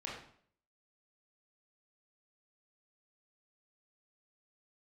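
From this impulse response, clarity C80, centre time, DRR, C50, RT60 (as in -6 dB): 6.5 dB, 47 ms, -5.0 dB, 2.5 dB, 0.55 s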